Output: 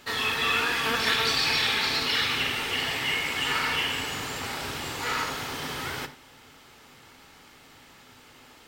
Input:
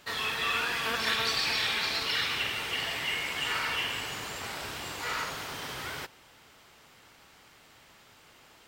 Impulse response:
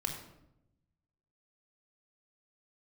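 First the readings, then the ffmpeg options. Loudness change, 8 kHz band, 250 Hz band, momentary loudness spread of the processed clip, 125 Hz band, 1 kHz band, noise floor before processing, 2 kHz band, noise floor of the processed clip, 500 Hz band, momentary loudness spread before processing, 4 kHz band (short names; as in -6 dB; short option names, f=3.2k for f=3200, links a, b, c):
+4.5 dB, +4.0 dB, +7.5 dB, 10 LU, +6.5 dB, +4.5 dB, -58 dBFS, +4.0 dB, -53 dBFS, +5.0 dB, 10 LU, +4.0 dB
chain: -filter_complex "[0:a]equalizer=f=250:w=5.6:g=10.5,asplit=2[a][b];[1:a]atrim=start_sample=2205,afade=t=out:st=0.16:d=0.01,atrim=end_sample=7497[c];[b][c]afir=irnorm=-1:irlink=0,volume=-4dB[d];[a][d]amix=inputs=2:normalize=0"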